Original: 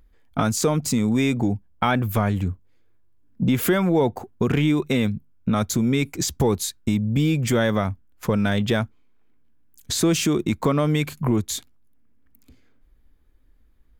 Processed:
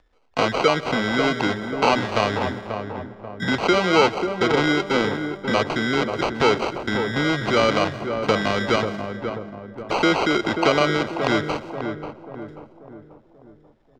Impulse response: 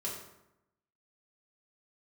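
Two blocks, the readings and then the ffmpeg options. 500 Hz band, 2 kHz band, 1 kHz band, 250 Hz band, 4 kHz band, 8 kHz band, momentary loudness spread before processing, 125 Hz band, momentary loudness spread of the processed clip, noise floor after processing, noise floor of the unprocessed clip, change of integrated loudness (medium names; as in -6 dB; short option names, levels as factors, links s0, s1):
+4.5 dB, +8.0 dB, +7.0 dB, -2.5 dB, +5.0 dB, -10.0 dB, 7 LU, -7.0 dB, 12 LU, -55 dBFS, -56 dBFS, +1.0 dB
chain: -filter_complex "[0:a]asplit=2[s0][s1];[1:a]atrim=start_sample=2205,adelay=128[s2];[s1][s2]afir=irnorm=-1:irlink=0,volume=0.106[s3];[s0][s3]amix=inputs=2:normalize=0,acrusher=samples=25:mix=1:aa=0.000001,acrossover=split=6600[s4][s5];[s5]acompressor=threshold=0.00501:ratio=4:attack=1:release=60[s6];[s4][s6]amix=inputs=2:normalize=0,acrossover=split=380 6100:gain=0.178 1 0.0708[s7][s8][s9];[s7][s8][s9]amix=inputs=3:normalize=0,asplit=2[s10][s11];[s11]adelay=537,lowpass=f=1100:p=1,volume=0.501,asplit=2[s12][s13];[s13]adelay=537,lowpass=f=1100:p=1,volume=0.5,asplit=2[s14][s15];[s15]adelay=537,lowpass=f=1100:p=1,volume=0.5,asplit=2[s16][s17];[s17]adelay=537,lowpass=f=1100:p=1,volume=0.5,asplit=2[s18][s19];[s19]adelay=537,lowpass=f=1100:p=1,volume=0.5,asplit=2[s20][s21];[s21]adelay=537,lowpass=f=1100:p=1,volume=0.5[s22];[s10][s12][s14][s16][s18][s20][s22]amix=inputs=7:normalize=0,volume=2"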